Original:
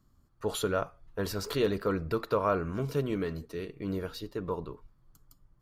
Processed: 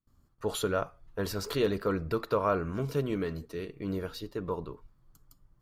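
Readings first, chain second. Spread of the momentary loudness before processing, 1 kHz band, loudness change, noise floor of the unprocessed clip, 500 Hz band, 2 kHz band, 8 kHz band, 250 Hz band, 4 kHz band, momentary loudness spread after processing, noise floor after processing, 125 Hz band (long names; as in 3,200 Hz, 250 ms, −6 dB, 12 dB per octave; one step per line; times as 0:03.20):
10 LU, 0.0 dB, 0.0 dB, −67 dBFS, 0.0 dB, 0.0 dB, 0.0 dB, 0.0 dB, 0.0 dB, 10 LU, −67 dBFS, 0.0 dB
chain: noise gate with hold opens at −58 dBFS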